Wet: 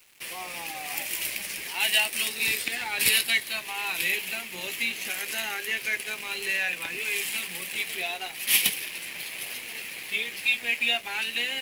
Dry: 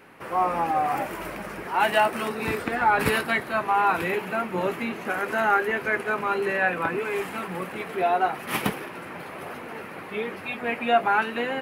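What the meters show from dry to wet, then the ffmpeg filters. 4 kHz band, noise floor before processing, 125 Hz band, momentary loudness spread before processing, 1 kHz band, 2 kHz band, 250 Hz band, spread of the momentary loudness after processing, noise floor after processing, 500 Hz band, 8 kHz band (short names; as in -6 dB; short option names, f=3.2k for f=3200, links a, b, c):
+10.5 dB, -39 dBFS, -14.5 dB, 13 LU, -16.5 dB, 0.0 dB, -14.5 dB, 12 LU, -40 dBFS, -15.5 dB, +14.0 dB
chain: -filter_complex "[0:a]asplit=2[a][b];[b]acompressor=threshold=-32dB:ratio=6,volume=2dB[c];[a][c]amix=inputs=2:normalize=0,aexciter=amount=14.7:drive=7.2:freq=2.1k,aeval=exprs='sgn(val(0))*max(abs(val(0))-0.0473,0)':c=same,volume=-17dB"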